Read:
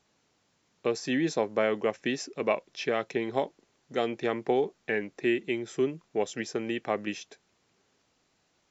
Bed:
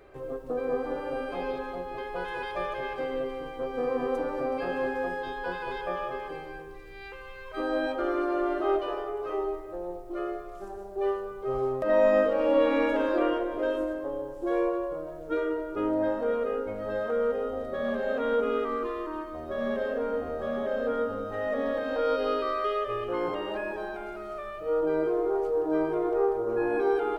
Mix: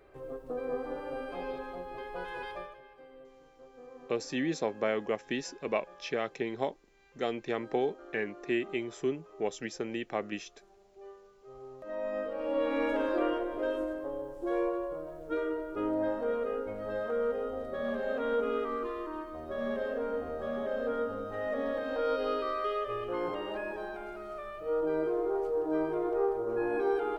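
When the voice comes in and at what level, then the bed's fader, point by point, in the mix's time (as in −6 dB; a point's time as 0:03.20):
3.25 s, −4.0 dB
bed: 0:02.51 −5.5 dB
0:02.83 −21.5 dB
0:11.45 −21.5 dB
0:12.91 −4 dB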